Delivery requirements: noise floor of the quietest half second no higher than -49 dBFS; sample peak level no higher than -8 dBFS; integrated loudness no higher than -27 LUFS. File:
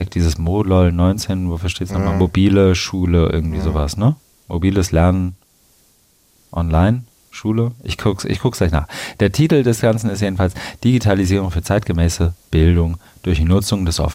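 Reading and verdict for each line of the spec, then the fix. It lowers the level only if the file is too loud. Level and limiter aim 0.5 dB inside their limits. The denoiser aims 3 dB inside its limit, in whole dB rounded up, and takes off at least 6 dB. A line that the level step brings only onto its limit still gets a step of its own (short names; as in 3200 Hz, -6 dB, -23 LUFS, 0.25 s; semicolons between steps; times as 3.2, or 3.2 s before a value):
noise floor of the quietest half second -56 dBFS: OK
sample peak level -3.0 dBFS: fail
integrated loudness -17.0 LUFS: fail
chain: gain -10.5 dB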